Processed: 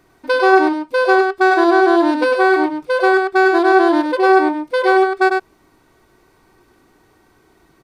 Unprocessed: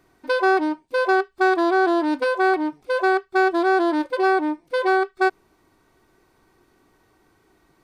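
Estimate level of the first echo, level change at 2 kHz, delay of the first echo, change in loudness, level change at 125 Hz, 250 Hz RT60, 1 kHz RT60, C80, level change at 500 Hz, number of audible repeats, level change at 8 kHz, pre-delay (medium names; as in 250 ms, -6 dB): -4.5 dB, +6.5 dB, 100 ms, +6.5 dB, no reading, no reverb, no reverb, no reverb, +7.0 dB, 1, no reading, no reverb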